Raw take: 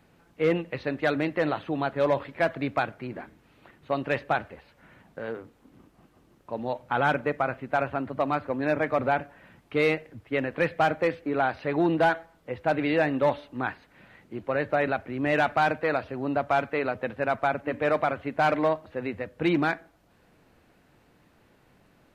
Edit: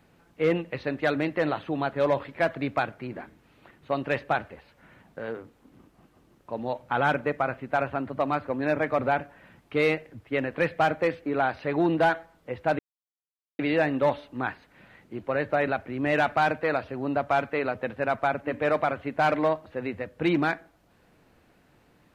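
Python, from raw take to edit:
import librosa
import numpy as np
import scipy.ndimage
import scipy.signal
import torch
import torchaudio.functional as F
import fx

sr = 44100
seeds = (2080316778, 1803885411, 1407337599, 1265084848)

y = fx.edit(x, sr, fx.insert_silence(at_s=12.79, length_s=0.8), tone=tone)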